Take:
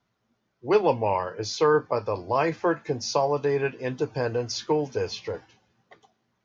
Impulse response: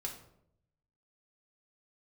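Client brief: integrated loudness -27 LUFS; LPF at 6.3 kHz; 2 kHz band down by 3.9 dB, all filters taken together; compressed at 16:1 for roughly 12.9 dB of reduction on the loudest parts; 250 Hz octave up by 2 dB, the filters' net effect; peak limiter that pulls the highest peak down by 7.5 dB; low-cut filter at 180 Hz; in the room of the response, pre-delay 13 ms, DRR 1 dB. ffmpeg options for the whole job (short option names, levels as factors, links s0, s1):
-filter_complex "[0:a]highpass=180,lowpass=6300,equalizer=f=250:t=o:g=4,equalizer=f=2000:t=o:g=-5.5,acompressor=threshold=0.0501:ratio=16,alimiter=limit=0.075:level=0:latency=1,asplit=2[s0][s1];[1:a]atrim=start_sample=2205,adelay=13[s2];[s1][s2]afir=irnorm=-1:irlink=0,volume=0.944[s3];[s0][s3]amix=inputs=2:normalize=0,volume=1.58"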